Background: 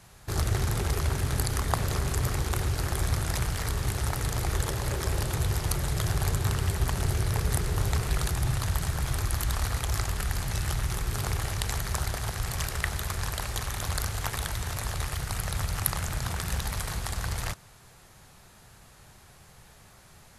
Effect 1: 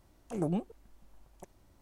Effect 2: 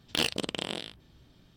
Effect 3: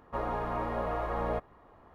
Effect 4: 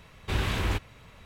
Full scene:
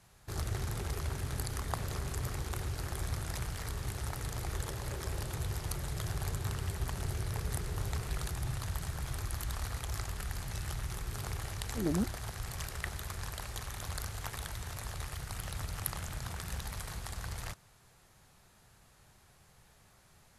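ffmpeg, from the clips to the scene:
ffmpeg -i bed.wav -i cue0.wav -i cue1.wav -filter_complex "[0:a]volume=-9dB[link_01];[1:a]equalizer=frequency=260:width=0.63:gain=14.5[link_02];[2:a]acompressor=threshold=-37dB:ratio=6:attack=3.2:release=140:knee=1:detection=peak[link_03];[link_02]atrim=end=1.81,asetpts=PTS-STARTPTS,volume=-12dB,afade=type=in:duration=0.004:curve=hsin,afade=type=out:start_time=1.806:duration=0.004:curve=hsin,adelay=11440[link_04];[link_03]atrim=end=1.56,asetpts=PTS-STARTPTS,volume=-14dB,afade=type=in:duration=0.004:curve=hsin,afade=type=out:start_time=1.556:duration=0.004:curve=hsin,adelay=15250[link_05];[link_01][link_04][link_05]amix=inputs=3:normalize=0" out.wav

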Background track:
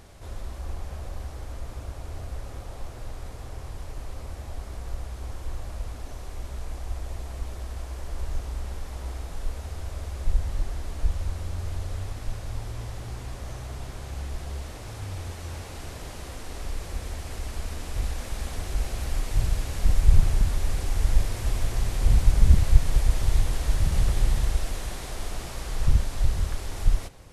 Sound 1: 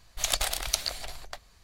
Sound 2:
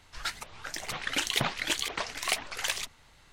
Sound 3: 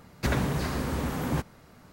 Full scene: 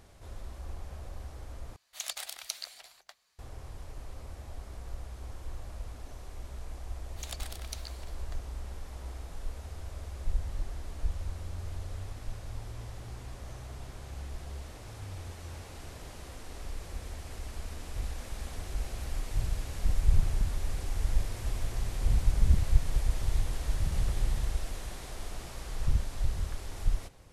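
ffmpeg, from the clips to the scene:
ffmpeg -i bed.wav -i cue0.wav -filter_complex "[1:a]asplit=2[link_01][link_02];[0:a]volume=-7dB[link_03];[link_01]highpass=frequency=1100:poles=1[link_04];[link_03]asplit=2[link_05][link_06];[link_05]atrim=end=1.764[link_07];[link_04]atrim=end=1.63,asetpts=PTS-STARTPTS,volume=-9.5dB[link_08];[link_06]atrim=start=3.386[link_09];[link_02]atrim=end=1.63,asetpts=PTS-STARTPTS,volume=-15dB,afade=type=in:duration=0.004:curve=hsin,afade=type=out:start_time=1.626:duration=0.004:curve=hsin,adelay=6990[link_10];[link_07][link_08]acrossfade=duration=0.004:curve1=hsin:curve2=hsin[link_11];[link_11][link_09]acrossfade=duration=0.004:curve1=hsin:curve2=hsin[link_12];[link_12][link_10]amix=inputs=2:normalize=0" out.wav

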